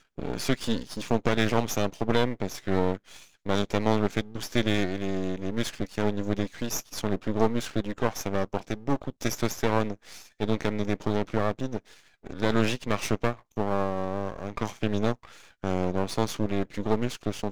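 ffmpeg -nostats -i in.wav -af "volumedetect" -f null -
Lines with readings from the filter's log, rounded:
mean_volume: -27.6 dB
max_volume: -7.1 dB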